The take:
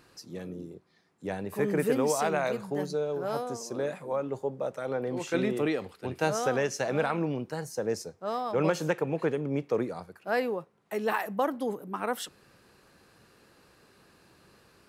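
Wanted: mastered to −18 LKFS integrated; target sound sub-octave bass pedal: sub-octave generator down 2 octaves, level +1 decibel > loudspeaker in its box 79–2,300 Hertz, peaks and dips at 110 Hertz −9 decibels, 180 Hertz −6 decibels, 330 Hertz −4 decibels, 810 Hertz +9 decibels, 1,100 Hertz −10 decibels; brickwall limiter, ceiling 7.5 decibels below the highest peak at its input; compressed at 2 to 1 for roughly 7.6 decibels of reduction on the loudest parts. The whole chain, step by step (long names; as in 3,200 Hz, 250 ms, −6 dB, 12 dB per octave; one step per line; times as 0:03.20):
downward compressor 2 to 1, threshold −36 dBFS
brickwall limiter −27 dBFS
sub-octave generator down 2 octaves, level +1 dB
loudspeaker in its box 79–2,300 Hz, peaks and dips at 110 Hz −9 dB, 180 Hz −6 dB, 330 Hz −4 dB, 810 Hz +9 dB, 1,100 Hz −10 dB
level +20.5 dB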